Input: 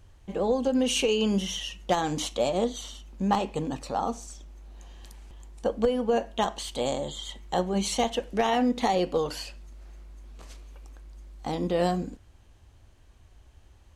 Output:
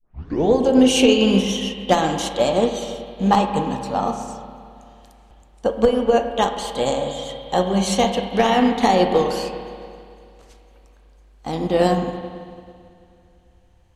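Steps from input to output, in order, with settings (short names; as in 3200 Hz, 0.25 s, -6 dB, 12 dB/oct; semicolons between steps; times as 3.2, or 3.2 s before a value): tape start at the beginning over 0.52 s; spring tank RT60 3.3 s, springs 31/55 ms, chirp 20 ms, DRR 2.5 dB; upward expander 1.5:1, over -45 dBFS; gain +9 dB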